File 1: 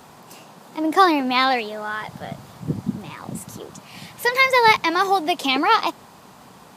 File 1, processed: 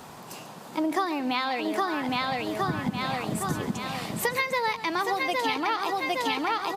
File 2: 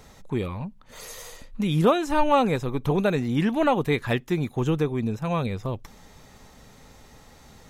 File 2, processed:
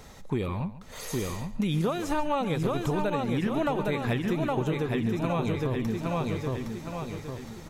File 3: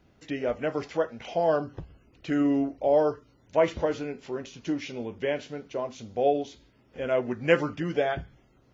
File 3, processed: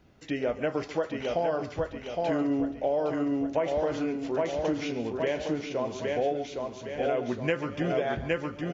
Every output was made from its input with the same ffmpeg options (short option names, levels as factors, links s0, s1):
-filter_complex "[0:a]asplit=2[s0][s1];[s1]aecho=0:1:813|1626|2439|3252|4065:0.596|0.256|0.11|0.0474|0.0204[s2];[s0][s2]amix=inputs=2:normalize=0,acompressor=threshold=0.0562:ratio=12,asplit=2[s3][s4];[s4]aecho=0:1:140:0.178[s5];[s3][s5]amix=inputs=2:normalize=0,volume=1.19"